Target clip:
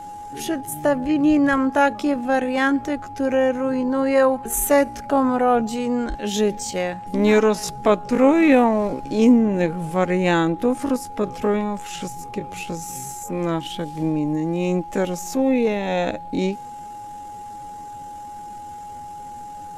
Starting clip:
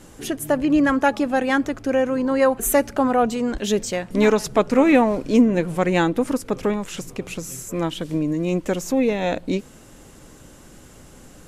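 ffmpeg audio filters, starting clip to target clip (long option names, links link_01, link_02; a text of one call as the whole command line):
ffmpeg -i in.wav -af "aeval=exprs='val(0)+0.0224*sin(2*PI*830*n/s)':channel_layout=same,atempo=0.58" out.wav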